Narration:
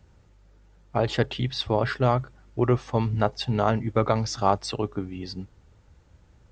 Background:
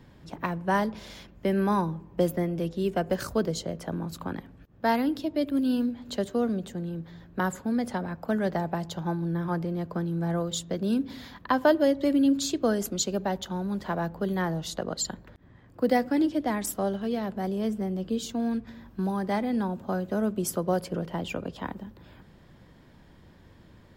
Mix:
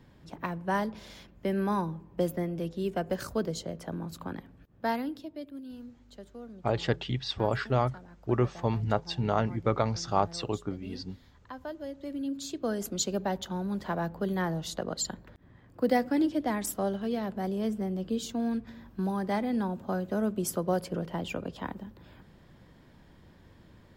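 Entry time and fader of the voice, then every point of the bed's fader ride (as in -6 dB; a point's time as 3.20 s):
5.70 s, -4.5 dB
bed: 4.82 s -4 dB
5.69 s -18.5 dB
11.73 s -18.5 dB
13.02 s -2 dB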